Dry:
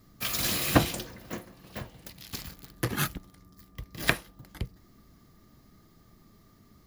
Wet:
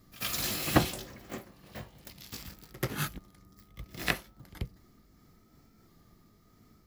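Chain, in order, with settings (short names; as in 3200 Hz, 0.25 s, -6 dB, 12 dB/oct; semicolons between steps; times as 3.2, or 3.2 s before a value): repeated pitch sweeps +1.5 st, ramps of 1.466 s; pre-echo 86 ms -18 dB; gain -2 dB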